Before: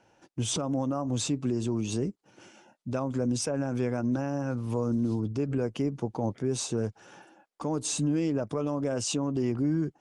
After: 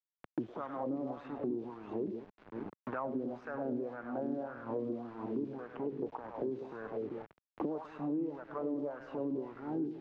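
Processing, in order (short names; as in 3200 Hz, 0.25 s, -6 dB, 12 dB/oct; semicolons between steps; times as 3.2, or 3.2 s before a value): HPF 130 Hz 12 dB/oct; high shelf 2900 Hz -5 dB; in parallel at -2 dB: compressor, threshold -36 dBFS, peak gain reduction 11.5 dB; on the sum: limiter -24 dBFS, peak gain reduction 8 dB; power-law curve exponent 1.4; on a send: split-band echo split 420 Hz, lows 0.195 s, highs 0.101 s, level -7 dB; on the sum: LFO band-pass sine 1.8 Hz 320–1600 Hz; sample gate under -55.5 dBFS; tape spacing loss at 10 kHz 37 dB; three-band squash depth 100%; gain +2.5 dB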